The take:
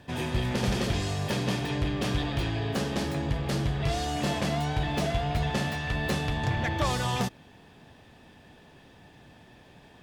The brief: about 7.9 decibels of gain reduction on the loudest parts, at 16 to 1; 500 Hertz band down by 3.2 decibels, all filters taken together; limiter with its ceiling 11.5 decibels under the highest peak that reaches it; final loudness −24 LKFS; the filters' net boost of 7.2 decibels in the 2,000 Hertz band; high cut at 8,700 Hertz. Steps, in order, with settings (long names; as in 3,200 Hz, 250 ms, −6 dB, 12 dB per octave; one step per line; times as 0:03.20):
low-pass filter 8,700 Hz
parametric band 500 Hz −5 dB
parametric band 2,000 Hz +9 dB
downward compressor 16 to 1, threshold −30 dBFS
level +17.5 dB
brickwall limiter −15 dBFS